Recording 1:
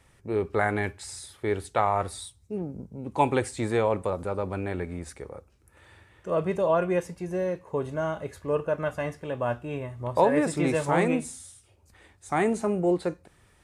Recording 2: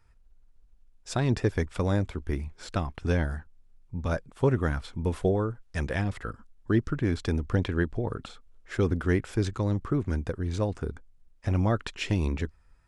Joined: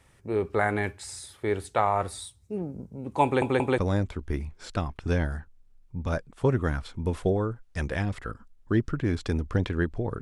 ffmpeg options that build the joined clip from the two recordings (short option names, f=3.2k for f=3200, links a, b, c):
-filter_complex "[0:a]apad=whole_dur=10.21,atrim=end=10.21,asplit=3[a][b][c];[a]atrim=end=3.422[d];[b]atrim=start=3.238:end=3.422[e];[c]atrim=start=3.238:end=3.422[f];[1:a]atrim=start=1.768:end=8.2[g];[d][e]acrossfade=d=0.004:c1=hsin:c2=hsin[h];[h][f]acrossfade=d=0.004:c1=hsin:c2=hsin[i];[i][g]acrossfade=d=0.004:c1=hsin:c2=hsin"